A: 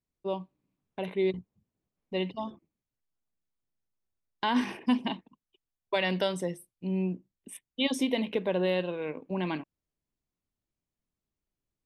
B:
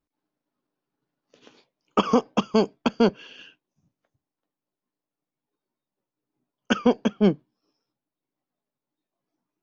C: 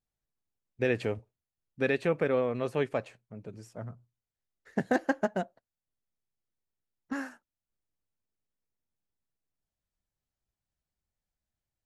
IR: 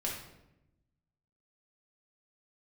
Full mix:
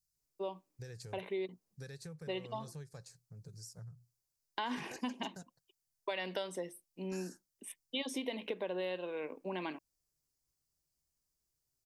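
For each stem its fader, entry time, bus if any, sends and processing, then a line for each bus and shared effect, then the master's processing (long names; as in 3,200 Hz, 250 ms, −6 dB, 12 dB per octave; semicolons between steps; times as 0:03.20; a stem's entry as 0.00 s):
−2.5 dB, 0.15 s, no bus, no send, high-pass filter 300 Hz 12 dB per octave
muted
−2.5 dB, 0.00 s, bus A, no send, thirty-one-band graphic EQ 160 Hz +10 dB, 630 Hz −11 dB, 1,600 Hz +7 dB, 4,000 Hz +4 dB
bus A: 0.0 dB, drawn EQ curve 140 Hz 0 dB, 240 Hz −20 dB, 490 Hz −9 dB, 3,000 Hz −18 dB, 4,900 Hz +12 dB; downward compressor 4 to 1, threshold −47 dBFS, peak gain reduction 13.5 dB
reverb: not used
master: downward compressor 3 to 1, threshold −36 dBFS, peak gain reduction 8 dB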